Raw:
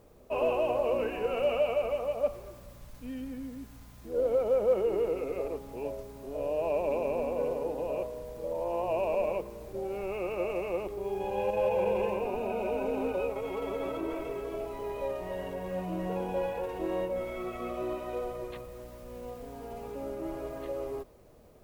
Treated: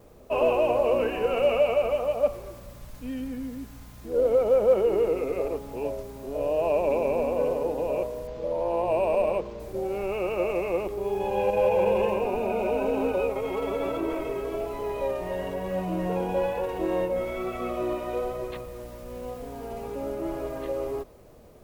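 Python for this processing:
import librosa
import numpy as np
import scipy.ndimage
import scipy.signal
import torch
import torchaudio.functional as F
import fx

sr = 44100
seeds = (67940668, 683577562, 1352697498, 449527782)

y = fx.vibrato(x, sr, rate_hz=1.1, depth_cents=23.0)
y = fx.resample_linear(y, sr, factor=4, at=(8.27, 9.6))
y = y * librosa.db_to_amplitude(5.5)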